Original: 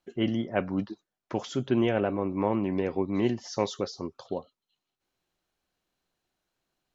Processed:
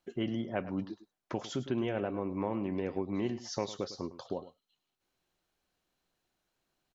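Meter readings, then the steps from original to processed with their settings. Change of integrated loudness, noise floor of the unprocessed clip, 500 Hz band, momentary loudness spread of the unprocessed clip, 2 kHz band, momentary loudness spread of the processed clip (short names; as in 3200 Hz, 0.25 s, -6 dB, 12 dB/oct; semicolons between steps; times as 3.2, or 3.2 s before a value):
-6.5 dB, under -85 dBFS, -6.5 dB, 11 LU, -7.0 dB, 8 LU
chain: compressor 2:1, threshold -35 dBFS, peak gain reduction 8.5 dB; on a send: echo 0.105 s -15 dB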